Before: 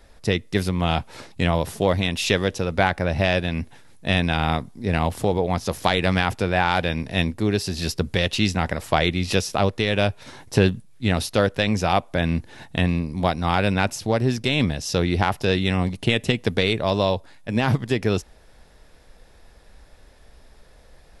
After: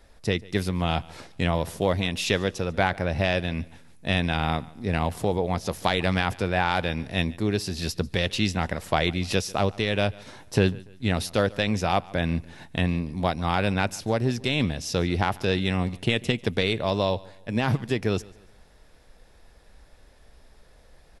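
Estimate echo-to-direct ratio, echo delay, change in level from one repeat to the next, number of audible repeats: -22.0 dB, 144 ms, -8.5 dB, 2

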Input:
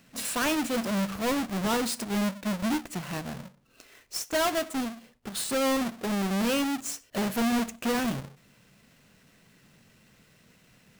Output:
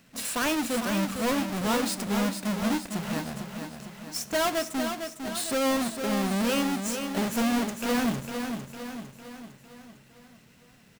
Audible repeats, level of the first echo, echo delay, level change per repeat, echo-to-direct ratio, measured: 6, -7.0 dB, 454 ms, -5.5 dB, -5.5 dB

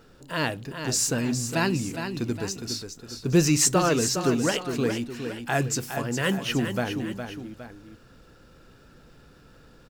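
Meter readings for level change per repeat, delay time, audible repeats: -6.5 dB, 411 ms, 2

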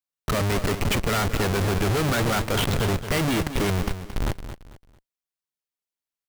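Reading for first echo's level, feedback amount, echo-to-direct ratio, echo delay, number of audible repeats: -11.0 dB, 30%, -10.5 dB, 223 ms, 3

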